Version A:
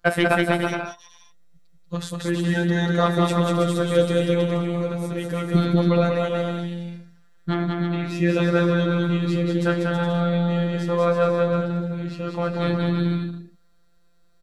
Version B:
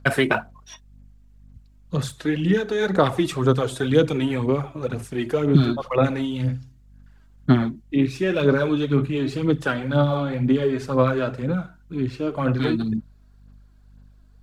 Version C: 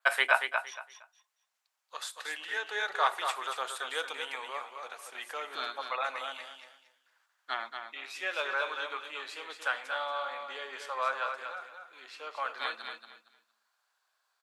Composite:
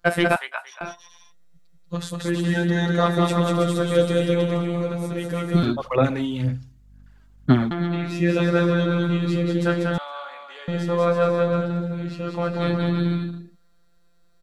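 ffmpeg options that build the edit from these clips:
-filter_complex "[2:a]asplit=2[a][b];[0:a]asplit=4[c][d][e][f];[c]atrim=end=0.362[g];[a]atrim=start=0.358:end=0.812[h];[d]atrim=start=0.808:end=5.632[i];[1:a]atrim=start=5.628:end=7.712[j];[e]atrim=start=7.708:end=9.982[k];[b]atrim=start=9.978:end=10.682[l];[f]atrim=start=10.678[m];[g][h]acrossfade=d=0.004:c1=hsin:c2=hsin[n];[n][i]acrossfade=d=0.004:c1=hsin:c2=hsin[o];[o][j]acrossfade=d=0.004:c1=hsin:c2=hsin[p];[p][k]acrossfade=d=0.004:c1=hsin:c2=hsin[q];[q][l]acrossfade=d=0.004:c1=hsin:c2=hsin[r];[r][m]acrossfade=d=0.004:c1=hsin:c2=hsin"

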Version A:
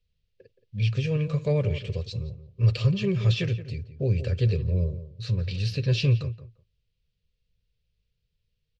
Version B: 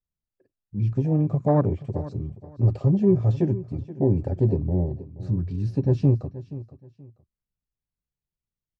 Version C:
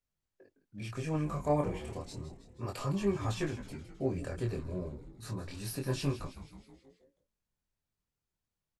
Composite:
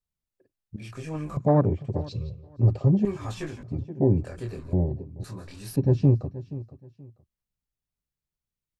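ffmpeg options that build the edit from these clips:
-filter_complex "[2:a]asplit=4[a][b][c][d];[1:a]asplit=6[e][f][g][h][i][j];[e]atrim=end=0.762[k];[a]atrim=start=0.758:end=1.372[l];[f]atrim=start=1.368:end=2.22[m];[0:a]atrim=start=1.98:end=2.63[n];[g]atrim=start=2.39:end=3.052[o];[b]atrim=start=3.048:end=3.632[p];[h]atrim=start=3.628:end=4.252[q];[c]atrim=start=4.248:end=4.732[r];[i]atrim=start=4.728:end=5.242[s];[d]atrim=start=5.238:end=5.762[t];[j]atrim=start=5.758[u];[k][l]acrossfade=d=0.004:c1=hsin:c2=hsin[v];[v][m]acrossfade=d=0.004:c1=hsin:c2=hsin[w];[w][n]acrossfade=d=0.24:c1=tri:c2=tri[x];[x][o]acrossfade=d=0.24:c1=tri:c2=tri[y];[y][p]acrossfade=d=0.004:c1=hsin:c2=hsin[z];[z][q]acrossfade=d=0.004:c1=hsin:c2=hsin[aa];[aa][r]acrossfade=d=0.004:c1=hsin:c2=hsin[ab];[ab][s]acrossfade=d=0.004:c1=hsin:c2=hsin[ac];[ac][t]acrossfade=d=0.004:c1=hsin:c2=hsin[ad];[ad][u]acrossfade=d=0.004:c1=hsin:c2=hsin"

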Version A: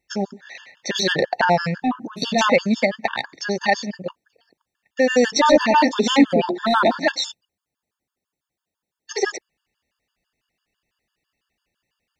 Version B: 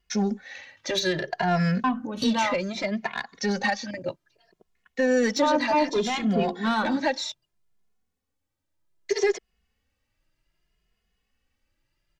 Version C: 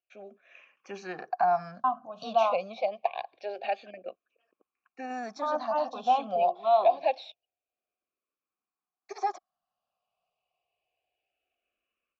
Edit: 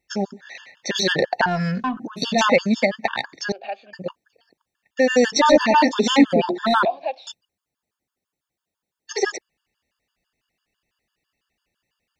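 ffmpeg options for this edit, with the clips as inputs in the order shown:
-filter_complex "[2:a]asplit=2[a][b];[0:a]asplit=4[c][d][e][f];[c]atrim=end=1.462[g];[1:a]atrim=start=1.458:end=1.972[h];[d]atrim=start=1.968:end=3.522[i];[a]atrim=start=3.518:end=3.932[j];[e]atrim=start=3.928:end=6.852[k];[b]atrim=start=6.848:end=7.272[l];[f]atrim=start=7.268[m];[g][h]acrossfade=d=0.004:c1=hsin:c2=hsin[n];[n][i]acrossfade=d=0.004:c1=hsin:c2=hsin[o];[o][j]acrossfade=d=0.004:c1=hsin:c2=hsin[p];[p][k]acrossfade=d=0.004:c1=hsin:c2=hsin[q];[q][l]acrossfade=d=0.004:c1=hsin:c2=hsin[r];[r][m]acrossfade=d=0.004:c1=hsin:c2=hsin"

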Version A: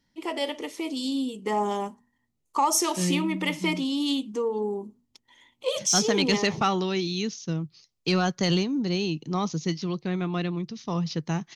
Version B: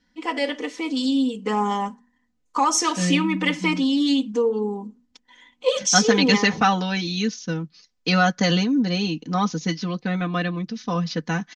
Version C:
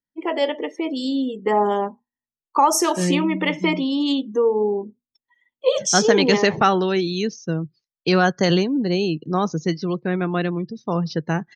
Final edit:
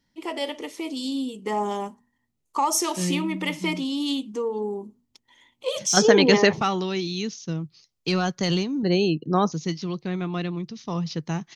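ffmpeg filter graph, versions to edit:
-filter_complex "[2:a]asplit=2[a][b];[0:a]asplit=3[c][d][e];[c]atrim=end=5.972[f];[a]atrim=start=5.968:end=6.532[g];[d]atrim=start=6.528:end=8.832[h];[b]atrim=start=8.828:end=9.522[i];[e]atrim=start=9.518[j];[f][g]acrossfade=d=0.004:c1=hsin:c2=hsin[k];[k][h]acrossfade=d=0.004:c1=hsin:c2=hsin[l];[l][i]acrossfade=d=0.004:c1=hsin:c2=hsin[m];[m][j]acrossfade=d=0.004:c1=hsin:c2=hsin"

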